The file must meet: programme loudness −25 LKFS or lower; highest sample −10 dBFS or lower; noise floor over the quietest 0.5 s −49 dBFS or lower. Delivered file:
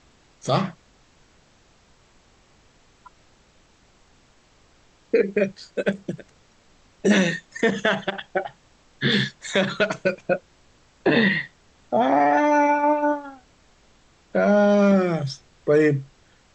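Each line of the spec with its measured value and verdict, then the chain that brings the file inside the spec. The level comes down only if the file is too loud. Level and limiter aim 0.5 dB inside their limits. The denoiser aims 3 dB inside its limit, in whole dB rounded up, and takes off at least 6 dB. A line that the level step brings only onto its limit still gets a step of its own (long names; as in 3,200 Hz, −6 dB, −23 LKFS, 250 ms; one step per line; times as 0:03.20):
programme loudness −22.0 LKFS: out of spec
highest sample −6.5 dBFS: out of spec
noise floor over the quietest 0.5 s −57 dBFS: in spec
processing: level −3.5 dB
brickwall limiter −10.5 dBFS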